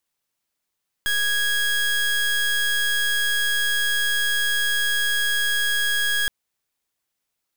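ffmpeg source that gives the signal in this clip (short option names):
-f lavfi -i "aevalsrc='0.0841*(2*lt(mod(1650*t,1),0.28)-1)':d=5.22:s=44100"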